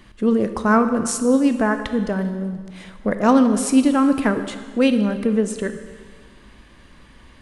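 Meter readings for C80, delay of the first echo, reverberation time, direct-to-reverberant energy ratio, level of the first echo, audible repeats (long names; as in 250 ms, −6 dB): 11.0 dB, no echo audible, 1.7 s, 8.5 dB, no echo audible, no echo audible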